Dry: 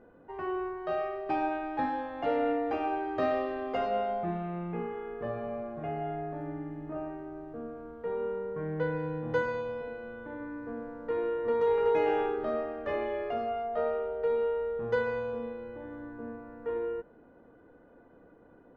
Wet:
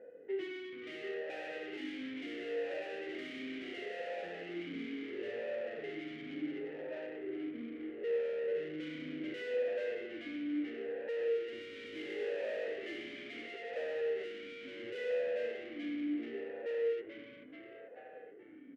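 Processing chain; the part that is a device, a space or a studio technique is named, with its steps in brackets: 15.72–16.5 comb 3.7 ms, depth 77%; dynamic EQ 1900 Hz, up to +6 dB, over -49 dBFS, Q 1.1; frequency-shifting echo 0.433 s, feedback 56%, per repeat +100 Hz, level -8 dB; talk box (tube stage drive 43 dB, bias 0.7; vowel sweep e-i 0.72 Hz); gain +14.5 dB

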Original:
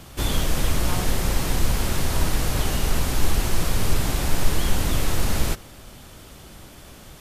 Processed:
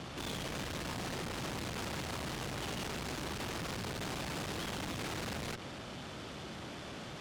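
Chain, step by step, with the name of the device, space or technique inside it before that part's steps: valve radio (BPF 120–4700 Hz; tube stage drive 40 dB, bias 0.3; core saturation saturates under 170 Hz); gain +4 dB

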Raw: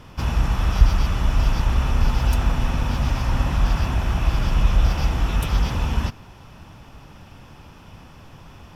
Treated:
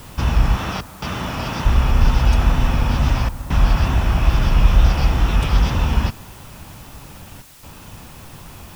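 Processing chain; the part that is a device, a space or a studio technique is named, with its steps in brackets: worn cassette (LPF 6500 Hz; wow and flutter; level dips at 0.81/3.29/7.42, 0.209 s -14 dB; white noise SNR 30 dB); 0.57–1.65 HPF 150 Hz 12 dB/oct; gain +4.5 dB

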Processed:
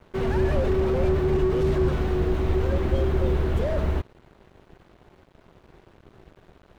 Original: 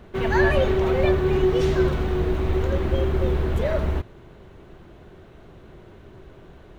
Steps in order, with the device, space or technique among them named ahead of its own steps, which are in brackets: early transistor amplifier (crossover distortion -46 dBFS; slew limiter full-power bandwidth 34 Hz)

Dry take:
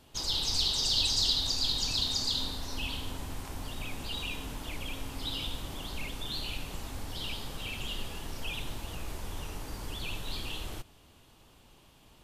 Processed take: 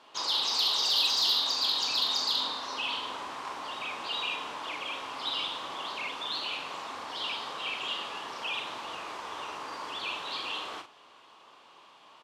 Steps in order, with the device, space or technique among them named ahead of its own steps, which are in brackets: intercom (BPF 500–4400 Hz; bell 1100 Hz +9 dB 0.5 oct; soft clip -23 dBFS, distortion -21 dB; doubler 43 ms -7 dB); gain +5 dB

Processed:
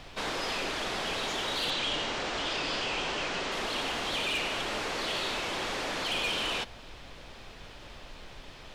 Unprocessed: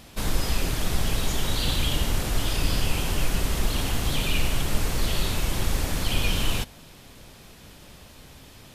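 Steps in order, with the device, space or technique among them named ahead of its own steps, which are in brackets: aircraft cabin announcement (BPF 420–4200 Hz; soft clip -28.5 dBFS, distortion -16 dB; brown noise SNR 14 dB); 1.7–3.52 LPF 7900 Hz 24 dB/oct; gain +3 dB

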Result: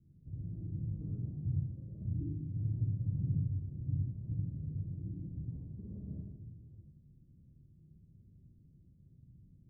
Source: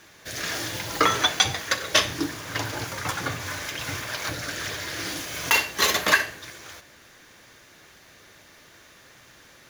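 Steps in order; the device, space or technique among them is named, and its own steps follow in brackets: club heard from the street (limiter -17 dBFS, peak gain reduction 12 dB; LPF 180 Hz 24 dB/oct; reverb RT60 0.55 s, pre-delay 52 ms, DRR -1.5 dB); gain +1 dB

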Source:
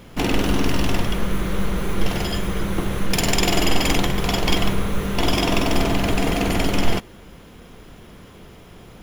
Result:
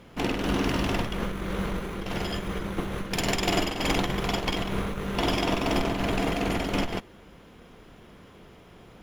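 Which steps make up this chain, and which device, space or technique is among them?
tube preamp driven hard (tube stage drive 6 dB, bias 0.75; low shelf 170 Hz -5 dB; high shelf 5300 Hz -8.5 dB)

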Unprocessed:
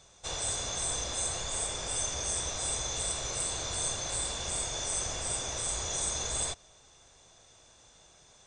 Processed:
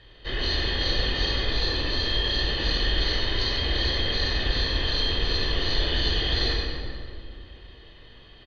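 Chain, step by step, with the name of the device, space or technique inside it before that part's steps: monster voice (pitch shift -5.5 st; formant shift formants -6 st; low shelf 140 Hz +8.5 dB; echo 98 ms -8.5 dB; reverb RT60 2.4 s, pre-delay 11 ms, DRR -1.5 dB); gain +3 dB

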